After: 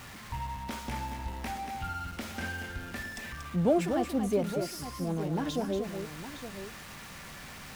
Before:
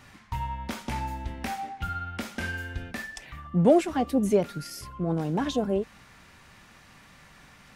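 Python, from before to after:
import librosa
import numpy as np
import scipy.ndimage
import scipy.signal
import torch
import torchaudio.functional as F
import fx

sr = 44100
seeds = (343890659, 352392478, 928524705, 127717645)

p1 = x + 0.5 * 10.0 ** (-36.0 / 20.0) * np.sign(x)
p2 = p1 + fx.echo_multitap(p1, sr, ms=(234, 863), db=(-7.0, -11.5), dry=0)
y = p2 * 10.0 ** (-6.5 / 20.0)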